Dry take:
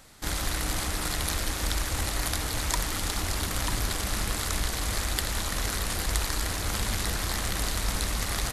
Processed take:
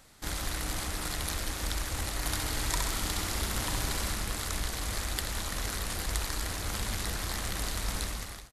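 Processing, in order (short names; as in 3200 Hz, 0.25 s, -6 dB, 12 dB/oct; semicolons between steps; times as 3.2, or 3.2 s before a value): ending faded out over 0.51 s; 2.19–4.13 flutter echo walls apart 11.3 m, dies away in 1 s; gain -4.5 dB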